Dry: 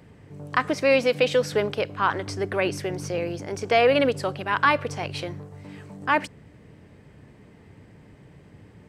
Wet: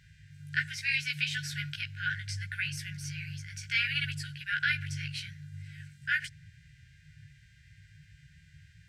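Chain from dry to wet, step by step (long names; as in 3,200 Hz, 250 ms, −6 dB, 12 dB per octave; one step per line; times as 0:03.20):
multi-voice chorus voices 4, 0.64 Hz, delay 16 ms, depth 4.1 ms
hum with harmonics 400 Hz, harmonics 19, −59 dBFS −7 dB per octave
linear-phase brick-wall band-stop 160–1,400 Hz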